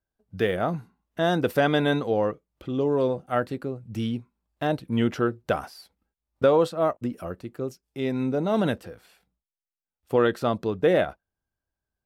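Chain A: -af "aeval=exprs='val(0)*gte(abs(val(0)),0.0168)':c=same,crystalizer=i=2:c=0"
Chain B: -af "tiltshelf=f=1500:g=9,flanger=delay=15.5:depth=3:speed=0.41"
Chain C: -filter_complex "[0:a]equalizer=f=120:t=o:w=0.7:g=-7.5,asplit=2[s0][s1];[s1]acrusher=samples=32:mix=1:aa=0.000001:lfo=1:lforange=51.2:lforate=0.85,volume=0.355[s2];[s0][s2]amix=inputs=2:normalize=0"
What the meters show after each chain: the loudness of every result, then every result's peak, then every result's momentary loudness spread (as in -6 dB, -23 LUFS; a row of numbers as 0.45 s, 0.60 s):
-25.5 LUFS, -21.5 LUFS, -24.5 LUFS; -9.0 dBFS, -3.5 dBFS, -7.5 dBFS; 13 LU, 12 LU, 13 LU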